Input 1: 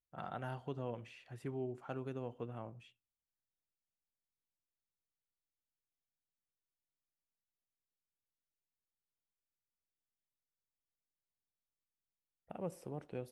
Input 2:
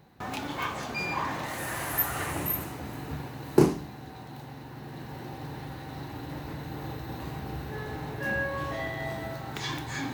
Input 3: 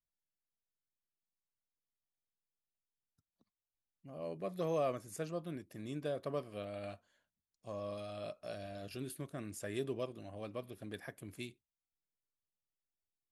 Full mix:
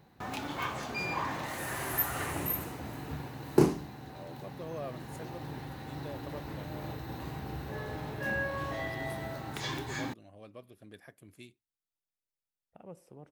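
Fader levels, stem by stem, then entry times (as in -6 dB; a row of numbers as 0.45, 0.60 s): -6.5, -3.0, -6.0 dB; 0.25, 0.00, 0.00 s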